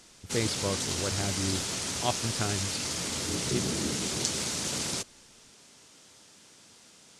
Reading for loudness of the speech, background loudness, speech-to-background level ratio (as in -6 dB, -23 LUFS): -35.0 LUFS, -30.5 LUFS, -4.5 dB